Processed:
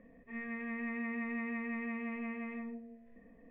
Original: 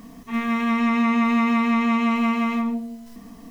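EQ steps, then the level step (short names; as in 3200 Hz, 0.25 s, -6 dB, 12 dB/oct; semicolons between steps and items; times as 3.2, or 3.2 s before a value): dynamic EQ 540 Hz, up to -4 dB, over -34 dBFS, Q 0.86; vocal tract filter e; low shelf 110 Hz +8.5 dB; -1.5 dB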